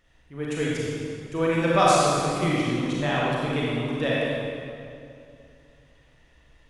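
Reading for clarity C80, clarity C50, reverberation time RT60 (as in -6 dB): -2.0 dB, -4.5 dB, 2.5 s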